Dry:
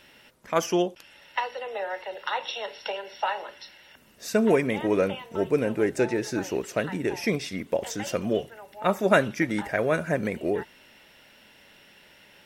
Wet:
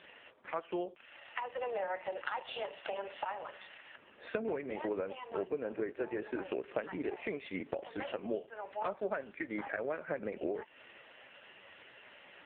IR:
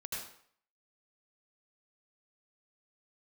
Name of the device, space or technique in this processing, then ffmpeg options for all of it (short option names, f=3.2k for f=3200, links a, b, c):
voicemail: -filter_complex "[0:a]asettb=1/sr,asplit=3[a][b][c];[a]atrim=end=2.624[d];[b]atrim=start=2.62:end=3.19,asetpts=PTS-STARTPTS,afade=t=in:d=0.004:c=qsin,afade=t=out:st=0.566:d=0.004:c=qsin,highpass=200[e];[c]atrim=start=3.186[f];[d][e]acrossfade=d=0.004:c1=hsin:c2=qsin[g];[g][f]acrossfade=d=0.004:c1=qsin:c2=hsin,highpass=340,lowpass=2.7k,acompressor=threshold=-38dB:ratio=12,volume=6dB" -ar 8000 -c:a libopencore_amrnb -b:a 4750